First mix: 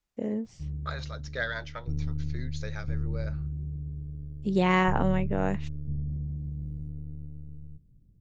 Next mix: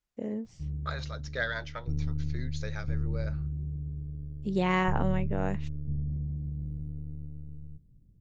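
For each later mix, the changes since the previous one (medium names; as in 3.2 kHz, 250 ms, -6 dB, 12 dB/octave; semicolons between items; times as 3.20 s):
first voice -3.5 dB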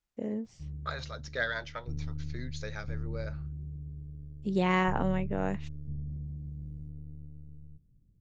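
background -5.5 dB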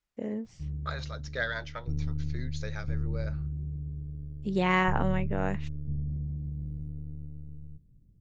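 first voice: add peaking EQ 1.8 kHz +4 dB 1.9 oct; background +5.0 dB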